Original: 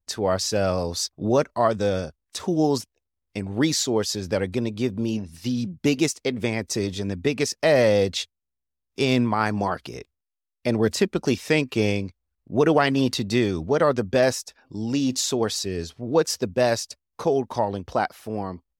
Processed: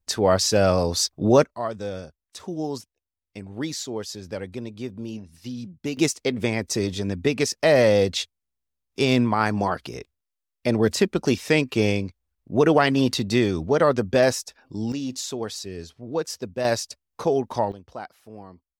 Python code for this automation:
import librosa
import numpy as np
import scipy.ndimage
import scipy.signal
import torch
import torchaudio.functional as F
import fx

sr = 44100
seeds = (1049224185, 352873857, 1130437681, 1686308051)

y = fx.gain(x, sr, db=fx.steps((0.0, 4.0), (1.45, -8.0), (5.97, 1.0), (14.92, -6.5), (16.65, 0.0), (17.72, -12.5)))